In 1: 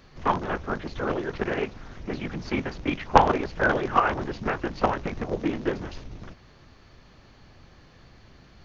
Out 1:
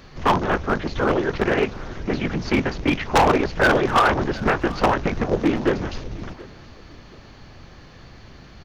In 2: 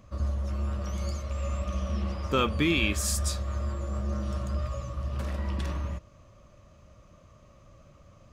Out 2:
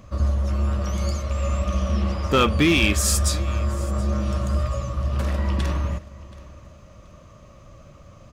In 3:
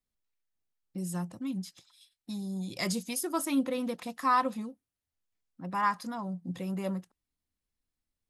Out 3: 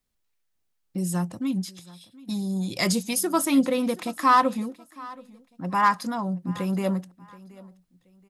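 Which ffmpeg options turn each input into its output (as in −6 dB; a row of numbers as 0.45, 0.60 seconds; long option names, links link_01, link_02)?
-af "volume=19.5dB,asoftclip=hard,volume=-19.5dB,aecho=1:1:727|1454:0.0891|0.0267,volume=8dB"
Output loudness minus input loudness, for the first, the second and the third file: +5.5, +7.5, +8.0 LU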